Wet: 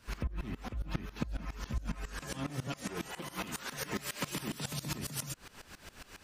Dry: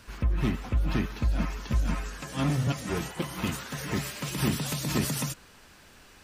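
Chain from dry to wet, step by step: 2.44–4.65 bell 85 Hz -11.5 dB 1.6 oct; compressor 6:1, threshold -37 dBFS, peak gain reduction 15 dB; dB-ramp tremolo swelling 7.3 Hz, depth 20 dB; gain +8 dB

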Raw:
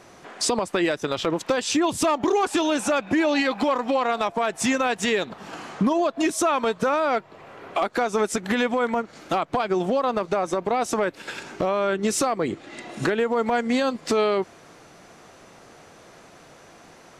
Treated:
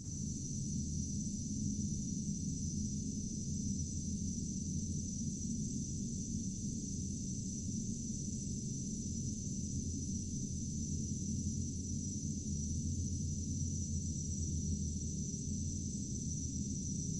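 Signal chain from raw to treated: spectral delay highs late, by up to 0.147 s; reverb removal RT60 0.62 s; spectral gate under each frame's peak -20 dB strong; elliptic band-stop 210–6400 Hz, stop band 80 dB; Paulstretch 14×, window 1.00 s, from 14.93; reverb RT60 2.9 s, pre-delay 42 ms, DRR -8 dB; gain +12.5 dB

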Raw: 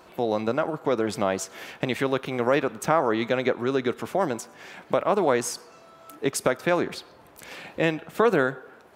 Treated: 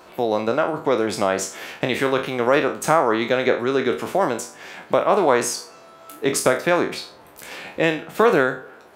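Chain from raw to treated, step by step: spectral trails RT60 0.36 s; tone controls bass -4 dB, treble 0 dB; gain +4 dB

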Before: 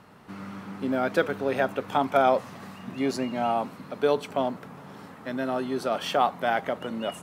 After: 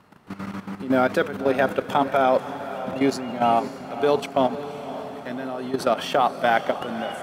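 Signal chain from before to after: level quantiser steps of 13 dB; diffused feedback echo 0.545 s, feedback 55%, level -12 dB; gain +8 dB

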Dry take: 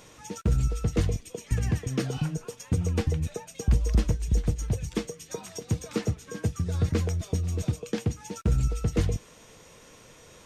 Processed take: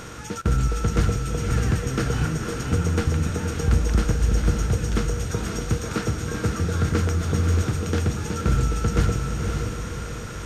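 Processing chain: per-bin compression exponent 0.6; bell 1400 Hz +11.5 dB 0.41 oct; diffused feedback echo 0.54 s, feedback 45%, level -4 dB

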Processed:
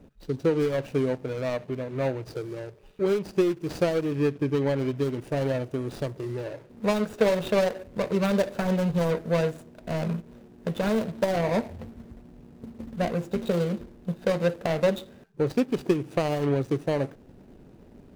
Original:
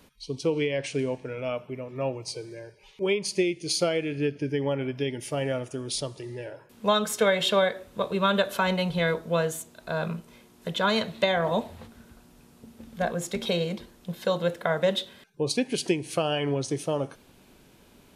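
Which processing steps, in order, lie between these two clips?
median filter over 41 samples; in parallel at -1 dB: compressor, threshold -39 dBFS, peak gain reduction 18 dB; on the sum: gain +2 dB

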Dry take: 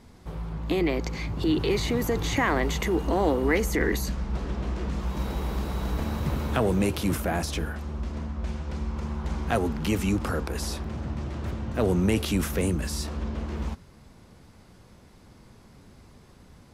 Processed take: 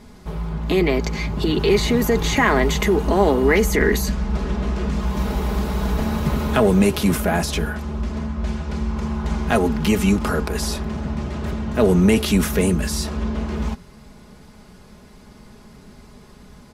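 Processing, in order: comb 4.8 ms, depth 52%; gain +6.5 dB

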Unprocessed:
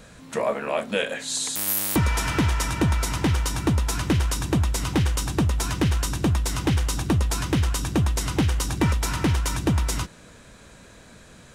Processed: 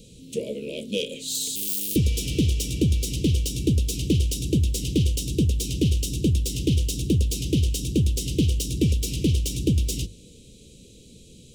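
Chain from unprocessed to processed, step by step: self-modulated delay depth 0.05 ms; elliptic band-stop 460–2900 Hz, stop band 40 dB; notches 50/100 Hz; gain +1.5 dB

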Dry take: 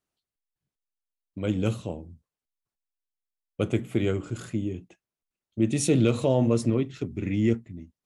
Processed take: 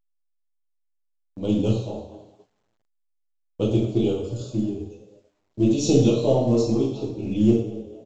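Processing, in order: half-wave gain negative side -3 dB; notches 50/100/150 Hz; reverb removal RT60 1.8 s; Butterworth band-stop 1800 Hz, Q 0.72; dynamic EQ 150 Hz, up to +5 dB, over -45 dBFS, Q 5.4; LPF 5100 Hz 12 dB/oct; high shelf 2700 Hz +4.5 dB; frequency-shifting echo 0.228 s, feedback 37%, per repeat +100 Hz, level -18 dB; two-slope reverb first 0.63 s, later 2.4 s, from -25 dB, DRR -6 dB; gate -51 dBFS, range -35 dB; A-law 128 kbps 16000 Hz

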